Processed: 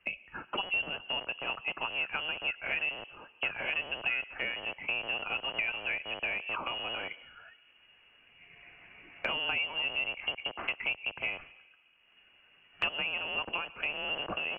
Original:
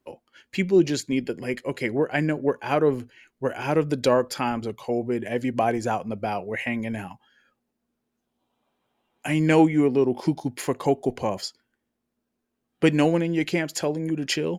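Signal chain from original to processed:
loose part that buzzes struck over −38 dBFS, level −25 dBFS
high-pass filter 510 Hz 6 dB per octave
on a send at −22.5 dB: convolution reverb RT60 0.80 s, pre-delay 92 ms
on the sum: voice inversion scrambler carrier 3,100 Hz
multiband upward and downward compressor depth 100%
level −7.5 dB

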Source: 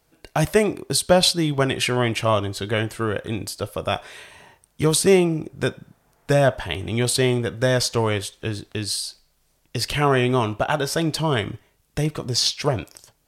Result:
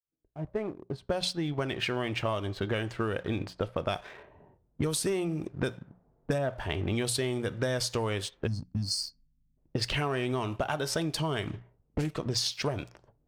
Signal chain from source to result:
fade in at the beginning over 3.22 s
mains-hum notches 60/120/180 Hz
low-pass that shuts in the quiet parts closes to 360 Hz, open at −19.5 dBFS
0:06.38–0:06.87: high-shelf EQ 3,500 Hz −12 dB
0:08.47–0:09.57: gain on a spectral selection 280–4,200 Hz −27 dB
leveller curve on the samples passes 1
downward compressor 12 to 1, threshold −27 dBFS, peak gain reduction 18 dB
0:11.46–0:12.16: highs frequency-modulated by the lows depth 0.62 ms

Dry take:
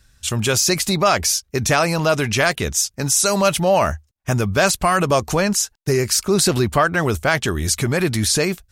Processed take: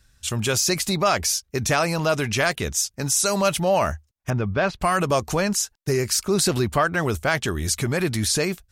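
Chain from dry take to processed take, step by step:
0:04.30–0:04.81: high-frequency loss of the air 300 metres
level −4 dB

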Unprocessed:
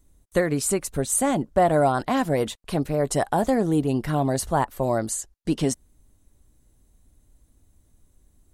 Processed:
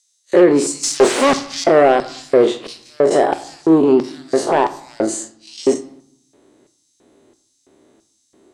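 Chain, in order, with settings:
spectrum smeared in time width 89 ms
dynamic equaliser 8,100 Hz, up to +5 dB, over −45 dBFS, Q 1.4
in parallel at +2 dB: downward compressor, threshold −32 dBFS, peak gain reduction 14.5 dB
0:00.83–0:01.64: on the sum: leveller curve on the samples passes 5
sine wavefolder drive 7 dB, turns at −8 dBFS
auto-filter high-pass square 1.5 Hz 370–5,400 Hz
soft clipping −2 dBFS, distortion −21 dB
high-frequency loss of the air 110 metres
on a send at −10.5 dB: convolution reverb RT60 0.70 s, pre-delay 3 ms

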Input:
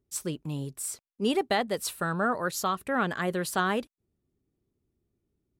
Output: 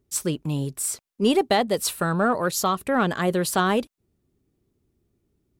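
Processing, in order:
dynamic equaliser 1,700 Hz, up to −5 dB, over −41 dBFS, Q 1.4
in parallel at −11 dB: soft clipping −25.5 dBFS, distortion −12 dB
on the sum: level +5.5 dB

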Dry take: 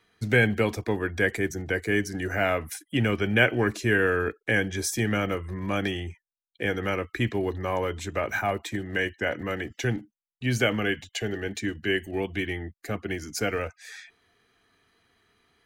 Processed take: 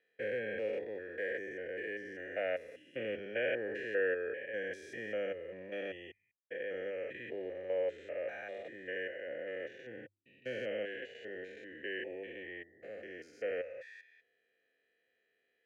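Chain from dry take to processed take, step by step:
spectrum averaged block by block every 200 ms
formant filter e
mains-hum notches 50/100 Hz
level +1.5 dB

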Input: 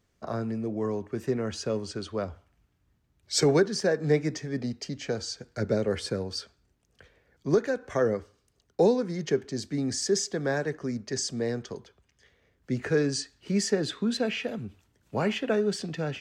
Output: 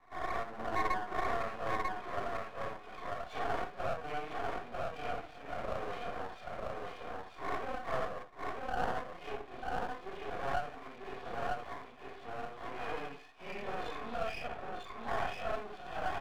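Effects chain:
random phases in long frames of 200 ms
band-pass filter sweep 1,300 Hz → 3,200 Hz, 0:01.29–0:02.11
dynamic equaliser 920 Hz, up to −3 dB, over −59 dBFS, Q 1.2
formant resonators in series a
mains-hum notches 50/100/150/200/250/300/350/400/450 Hz
single-tap delay 944 ms −5.5 dB
automatic gain control gain up to 16.5 dB
half-wave rectification
multiband upward and downward compressor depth 70%
level +17.5 dB

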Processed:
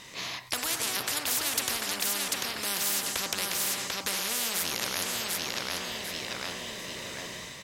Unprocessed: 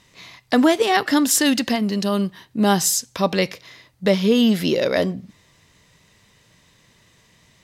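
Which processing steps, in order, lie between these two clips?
low-shelf EQ 190 Hz −11 dB
hum removal 52.8 Hz, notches 37
automatic gain control gain up to 7.5 dB
repeating echo 743 ms, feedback 26%, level −8 dB
comb and all-pass reverb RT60 2.8 s, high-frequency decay 0.7×, pre-delay 60 ms, DRR 19 dB
every bin compressed towards the loudest bin 10 to 1
level −6.5 dB

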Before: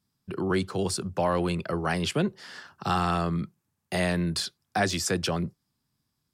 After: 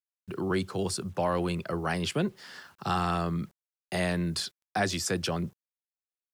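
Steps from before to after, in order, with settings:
bit reduction 10 bits
level −2.5 dB

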